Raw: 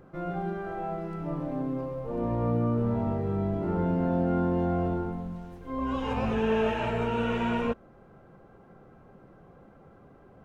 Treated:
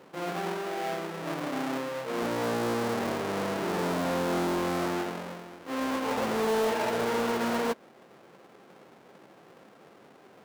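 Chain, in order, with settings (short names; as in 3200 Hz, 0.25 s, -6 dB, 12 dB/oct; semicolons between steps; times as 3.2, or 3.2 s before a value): half-waves squared off; HPF 320 Hz 12 dB/oct; high shelf 3600 Hz -10 dB; hard clip -21.5 dBFS, distortion -15 dB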